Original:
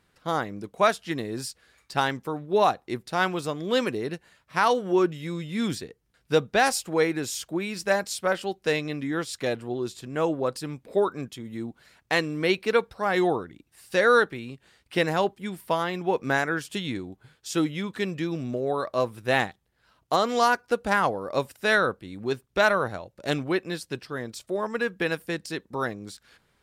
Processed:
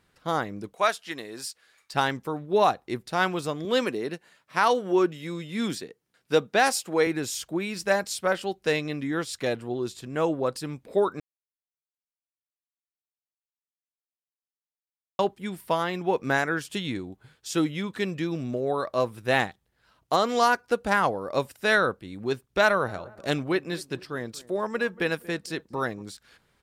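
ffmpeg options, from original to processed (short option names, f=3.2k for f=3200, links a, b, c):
-filter_complex "[0:a]asettb=1/sr,asplit=3[a][b][c];[a]atrim=end=0.734[d];[b]atrim=start=0.73:end=1.94,asetpts=PTS-STARTPTS,afade=t=in:d=0.004:c=qsin,afade=t=out:st=1.206:d=0.004:c=qsin,highpass=f=760:p=1[e];[c]atrim=start=1.936[f];[d][e]acrossfade=d=0.004:c1=hsin:c2=qsin[g];[g][f]acrossfade=d=0.004:c1=qsin:c2=hsin,asettb=1/sr,asplit=3[h][i][j];[h]atrim=end=3.654[k];[i]atrim=start=3.65:end=7.07,asetpts=PTS-STARTPTS,afade=t=in:d=0.004:c=qsin,afade=t=out:st=3.416:d=0.004:c=qsin,highpass=180[l];[j]atrim=start=7.066[m];[k][l]acrossfade=d=0.004:c1=hsin:c2=qsin[n];[n][m]acrossfade=d=0.004:c1=qsin:c2=hsin,asplit=3[o][p][q];[o]afade=t=out:st=22.87:d=0.02[r];[p]asplit=2[s][t];[t]adelay=233,lowpass=f=1.2k:p=1,volume=-19.5dB,asplit=2[u][v];[v]adelay=233,lowpass=f=1.2k:p=1,volume=0.43,asplit=2[w][x];[x]adelay=233,lowpass=f=1.2k:p=1,volume=0.43[y];[s][u][w][y]amix=inputs=4:normalize=0,afade=t=in:st=22.87:d=0.02,afade=t=out:st=26.01:d=0.02[z];[q]afade=t=in:st=26.01:d=0.02[aa];[r][z][aa]amix=inputs=3:normalize=0,asplit=3[ab][ac][ad];[ab]atrim=end=11.2,asetpts=PTS-STARTPTS,afade=t=out:st=11.196:d=0.004:c=hsin[ae];[ac]atrim=start=11.2:end=15.19,asetpts=PTS-STARTPTS,volume=0[af];[ad]atrim=start=15.19,asetpts=PTS-STARTPTS,afade=t=in:d=0.004:c=hsin[ag];[ae][af][ag]concat=n=3:v=0:a=1"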